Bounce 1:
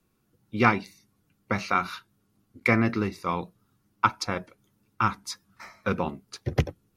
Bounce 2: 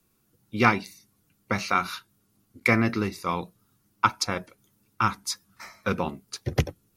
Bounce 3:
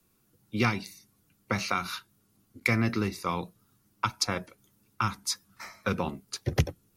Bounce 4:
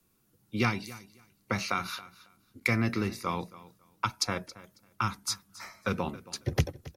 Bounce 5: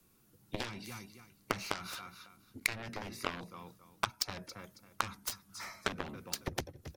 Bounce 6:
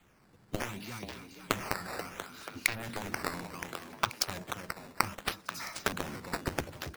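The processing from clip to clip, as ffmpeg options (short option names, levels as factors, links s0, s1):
-af "highshelf=f=4700:g=9.5"
-filter_complex "[0:a]acrossover=split=180|3000[s0][s1][s2];[s1]acompressor=threshold=0.0501:ratio=6[s3];[s0][s3][s2]amix=inputs=3:normalize=0"
-af "aecho=1:1:274|548:0.119|0.0214,volume=0.841"
-af "acompressor=threshold=0.0158:ratio=12,aeval=exprs='0.0944*(cos(1*acos(clip(val(0)/0.0944,-1,1)))-cos(1*PI/2))+0.0211*(cos(7*acos(clip(val(0)/0.0944,-1,1)))-cos(7*PI/2))':c=same,volume=2.37"
-filter_complex "[0:a]asplit=8[s0][s1][s2][s3][s4][s5][s6][s7];[s1]adelay=484,afreqshift=69,volume=0.355[s8];[s2]adelay=968,afreqshift=138,volume=0.202[s9];[s3]adelay=1452,afreqshift=207,volume=0.115[s10];[s4]adelay=1936,afreqshift=276,volume=0.0661[s11];[s5]adelay=2420,afreqshift=345,volume=0.0376[s12];[s6]adelay=2904,afreqshift=414,volume=0.0214[s13];[s7]adelay=3388,afreqshift=483,volume=0.0122[s14];[s0][s8][s9][s10][s11][s12][s13][s14]amix=inputs=8:normalize=0,acrusher=samples=8:mix=1:aa=0.000001:lfo=1:lforange=12.8:lforate=0.67,volume=1.5"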